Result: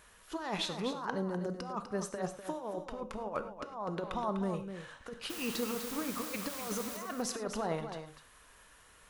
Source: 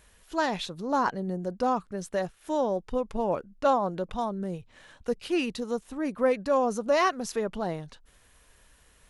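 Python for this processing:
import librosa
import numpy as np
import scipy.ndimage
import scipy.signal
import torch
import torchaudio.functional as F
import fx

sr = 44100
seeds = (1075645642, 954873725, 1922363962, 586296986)

p1 = fx.over_compress(x, sr, threshold_db=-31.0, ratio=-0.5)
p2 = fx.low_shelf(p1, sr, hz=150.0, db=-7.0)
p3 = fx.dmg_noise_colour(p2, sr, seeds[0], colour='white', level_db=-40.0, at=(5.29, 6.96), fade=0.02)
p4 = fx.peak_eq(p3, sr, hz=1200.0, db=6.5, octaves=0.84)
p5 = p4 + fx.echo_single(p4, sr, ms=249, db=-9.0, dry=0)
p6 = fx.rev_gated(p5, sr, seeds[1], gate_ms=130, shape='flat', drr_db=9.5)
y = F.gain(torch.from_numpy(p6), -5.0).numpy()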